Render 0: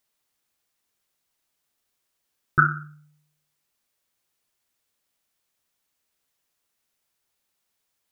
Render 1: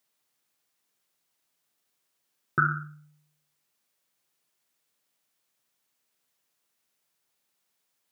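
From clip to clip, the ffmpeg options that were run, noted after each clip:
-af "highpass=f=110:w=0.5412,highpass=f=110:w=1.3066,alimiter=limit=-11dB:level=0:latency=1:release=101"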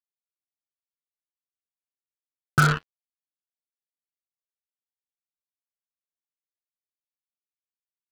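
-af "asubboost=boost=4.5:cutoff=190,acrusher=bits=3:mix=0:aa=0.5,volume=3.5dB"

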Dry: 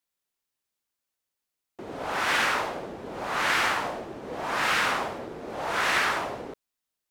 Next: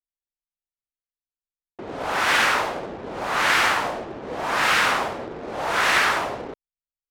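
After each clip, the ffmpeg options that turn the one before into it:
-af "anlmdn=0.0158,equalizer=f=210:w=0.49:g=-2,volume=5.5dB"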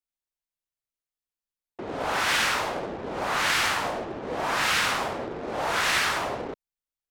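-filter_complex "[0:a]acrossover=split=190|3000[a][b][c];[b]acompressor=threshold=-24dB:ratio=6[d];[a][d][c]amix=inputs=3:normalize=0"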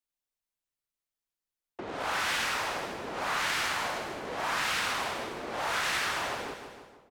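-filter_complex "[0:a]aecho=1:1:156|312|468|624|780:0.237|0.123|0.0641|0.0333|0.0173,acrossover=split=210|920[a][b][c];[a]acompressor=threshold=-51dB:ratio=4[d];[b]acompressor=threshold=-40dB:ratio=4[e];[c]acompressor=threshold=-29dB:ratio=4[f];[d][e][f]amix=inputs=3:normalize=0"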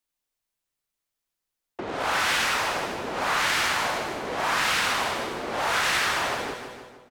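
-af "aecho=1:1:148|296|444|592:0.158|0.0777|0.0381|0.0186,volume=6dB"

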